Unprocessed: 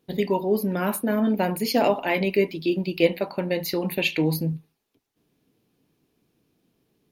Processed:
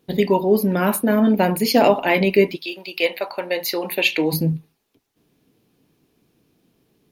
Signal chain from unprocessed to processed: 2.55–4.32 HPF 1000 Hz -> 320 Hz 12 dB/oct; gain +6 dB

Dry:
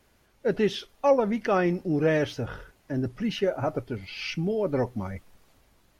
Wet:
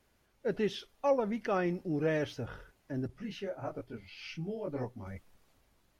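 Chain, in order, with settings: 3.07–5.07 detuned doubles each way 43 cents; gain -7.5 dB

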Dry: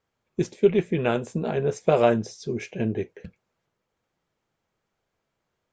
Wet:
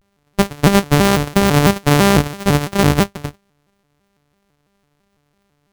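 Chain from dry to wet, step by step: sample sorter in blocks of 256 samples; maximiser +17 dB; shaped vibrato square 3 Hz, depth 250 cents; gain -2 dB

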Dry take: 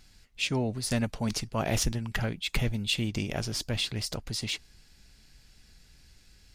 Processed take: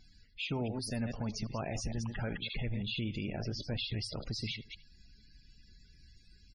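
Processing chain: reverse delay 0.113 s, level -9.5 dB; 3.31–3.77 high shelf 5000 Hz -> 2700 Hz -9.5 dB; limiter -25.5 dBFS, peak gain reduction 11 dB; echo 78 ms -18.5 dB; loudest bins only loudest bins 64; gain -2 dB

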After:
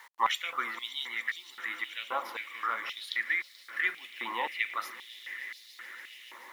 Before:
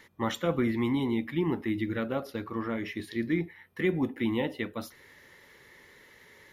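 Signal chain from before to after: swelling echo 0.144 s, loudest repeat 5, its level -18 dB; requantised 10-bit, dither none; stepped high-pass 3.8 Hz 990–4300 Hz

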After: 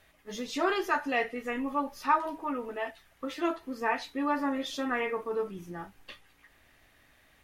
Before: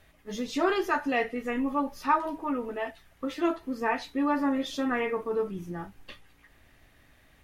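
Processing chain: low shelf 350 Hz -7.5 dB

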